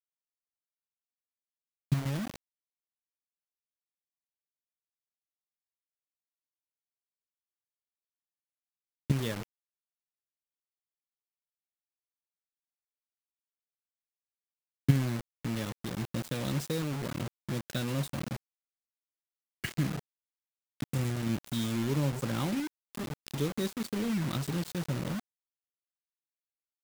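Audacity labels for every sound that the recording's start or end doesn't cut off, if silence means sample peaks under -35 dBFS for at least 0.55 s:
1.920000	2.360000	sound
9.100000	9.430000	sound
14.890000	18.360000	sound
19.640000	19.990000	sound
20.800000	25.200000	sound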